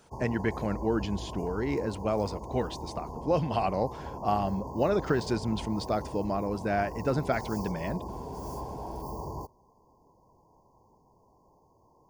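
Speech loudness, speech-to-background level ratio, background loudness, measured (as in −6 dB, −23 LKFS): −31.0 LKFS, 9.0 dB, −40.0 LKFS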